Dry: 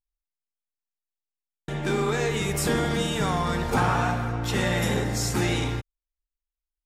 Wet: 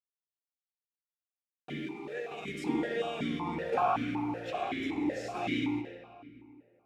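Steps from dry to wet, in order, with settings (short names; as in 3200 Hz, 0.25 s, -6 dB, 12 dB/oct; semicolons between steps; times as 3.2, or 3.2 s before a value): 1.7–2.49 negative-ratio compressor -29 dBFS, ratio -0.5; bit-crush 7-bit; 4.5–5.01 ring modulator 210 Hz; reverb RT60 2.5 s, pre-delay 43 ms, DRR 6.5 dB; vowel sequencer 5.3 Hz; gain +4 dB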